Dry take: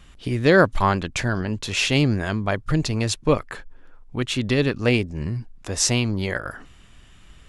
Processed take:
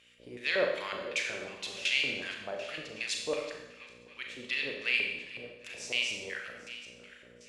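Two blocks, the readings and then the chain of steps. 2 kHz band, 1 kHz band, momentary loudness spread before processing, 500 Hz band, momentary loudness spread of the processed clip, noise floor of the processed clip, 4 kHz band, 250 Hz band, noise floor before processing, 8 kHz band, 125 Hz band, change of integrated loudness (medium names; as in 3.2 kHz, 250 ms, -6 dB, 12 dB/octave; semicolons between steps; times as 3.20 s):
-6.0 dB, -18.0 dB, 13 LU, -13.0 dB, 17 LU, -56 dBFS, -6.0 dB, -24.0 dB, -49 dBFS, -15.0 dB, -33.0 dB, -10.5 dB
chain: backward echo that repeats 397 ms, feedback 55%, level -14 dB; pre-emphasis filter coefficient 0.9; mains buzz 60 Hz, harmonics 10, -49 dBFS -7 dB/octave; LFO band-pass square 2.7 Hz 530–2400 Hz; Schroeder reverb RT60 0.9 s, combs from 29 ms, DRR 1.5 dB; trim +7 dB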